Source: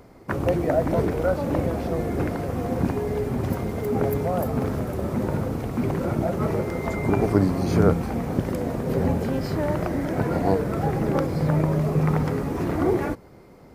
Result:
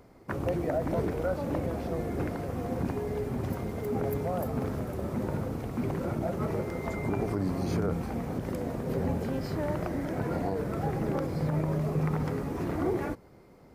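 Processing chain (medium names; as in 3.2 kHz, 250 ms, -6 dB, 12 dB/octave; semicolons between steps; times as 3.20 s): peak limiter -13 dBFS, peak gain reduction 8 dB; trim -6.5 dB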